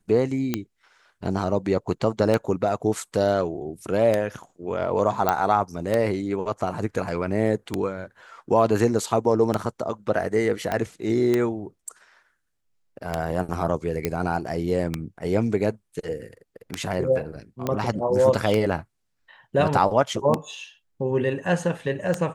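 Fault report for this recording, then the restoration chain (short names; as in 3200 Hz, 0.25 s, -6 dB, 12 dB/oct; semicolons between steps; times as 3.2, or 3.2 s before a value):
tick 33 1/3 rpm -9 dBFS
5.29 pop -7 dBFS
10.72 pop -12 dBFS
14.05 pop -9 dBFS
17.67 pop -12 dBFS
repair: de-click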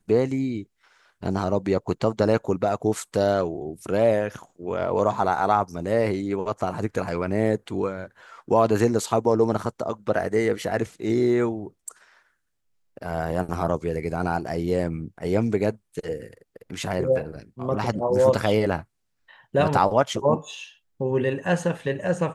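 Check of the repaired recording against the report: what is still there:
10.72 pop
17.67 pop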